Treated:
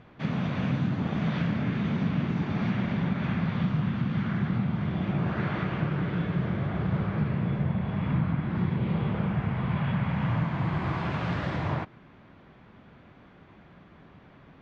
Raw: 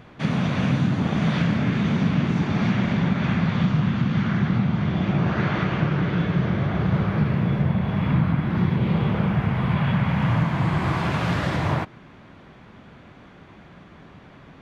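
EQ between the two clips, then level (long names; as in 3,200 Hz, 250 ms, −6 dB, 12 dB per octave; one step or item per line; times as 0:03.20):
high-frequency loss of the air 120 metres
−6.0 dB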